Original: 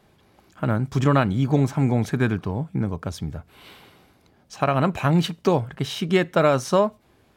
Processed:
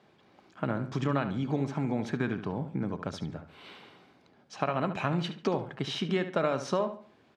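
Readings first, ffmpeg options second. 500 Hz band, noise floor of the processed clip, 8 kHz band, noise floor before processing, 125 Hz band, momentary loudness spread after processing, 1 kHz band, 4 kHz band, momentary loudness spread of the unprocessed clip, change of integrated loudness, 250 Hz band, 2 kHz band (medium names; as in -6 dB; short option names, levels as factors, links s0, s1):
-9.0 dB, -63 dBFS, -11.0 dB, -60 dBFS, -11.5 dB, 15 LU, -8.5 dB, -6.5 dB, 10 LU, -9.5 dB, -8.5 dB, -8.0 dB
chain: -filter_complex "[0:a]acompressor=threshold=0.0708:ratio=4,highpass=160,lowpass=5000,asplit=2[s0][s1];[s1]adelay=71,lowpass=f=3600:p=1,volume=0.316,asplit=2[s2][s3];[s3]adelay=71,lowpass=f=3600:p=1,volume=0.35,asplit=2[s4][s5];[s5]adelay=71,lowpass=f=3600:p=1,volume=0.35,asplit=2[s6][s7];[s7]adelay=71,lowpass=f=3600:p=1,volume=0.35[s8];[s0][s2][s4][s6][s8]amix=inputs=5:normalize=0,volume=0.75"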